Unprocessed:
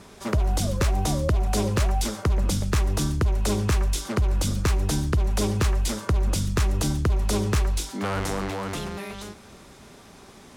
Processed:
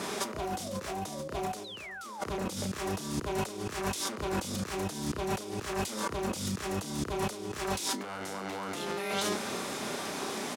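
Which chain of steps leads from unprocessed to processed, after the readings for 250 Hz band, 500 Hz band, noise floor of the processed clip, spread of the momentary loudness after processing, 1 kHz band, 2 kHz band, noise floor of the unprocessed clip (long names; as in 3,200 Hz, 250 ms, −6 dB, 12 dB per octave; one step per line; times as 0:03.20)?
−7.0 dB, −4.0 dB, −43 dBFS, 5 LU, −2.5 dB, −3.5 dB, −48 dBFS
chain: in parallel at −2.5 dB: brickwall limiter −24 dBFS, peak gain reduction 9.5 dB
on the sum: double-tracking delay 32 ms −5 dB
sound drawn into the spectrogram fall, 0:01.64–0:02.21, 780–4,200 Hz −23 dBFS
high-pass filter 240 Hz 12 dB per octave
compressor whose output falls as the input rises −36 dBFS, ratio −1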